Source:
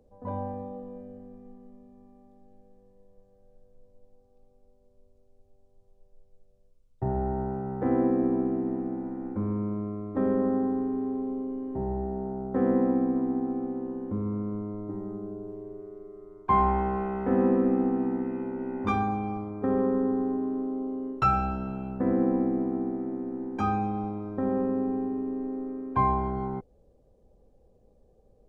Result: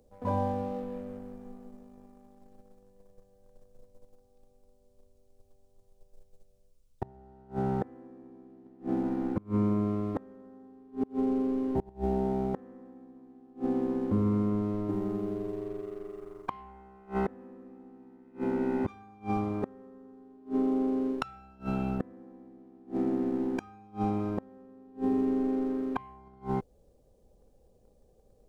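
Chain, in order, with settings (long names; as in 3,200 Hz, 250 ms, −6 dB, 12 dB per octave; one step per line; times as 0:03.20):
high-shelf EQ 3,100 Hz +11 dB
leveller curve on the samples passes 1
gate with flip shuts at −18 dBFS, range −29 dB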